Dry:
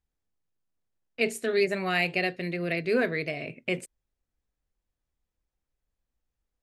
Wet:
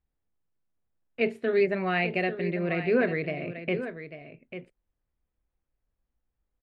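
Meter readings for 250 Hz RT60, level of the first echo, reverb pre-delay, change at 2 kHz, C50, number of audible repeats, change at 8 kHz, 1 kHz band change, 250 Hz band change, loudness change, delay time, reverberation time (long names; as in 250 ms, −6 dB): no reverb audible, −11.0 dB, no reverb audible, −1.5 dB, no reverb audible, 1, below −25 dB, +1.0 dB, +2.5 dB, +0.5 dB, 844 ms, no reverb audible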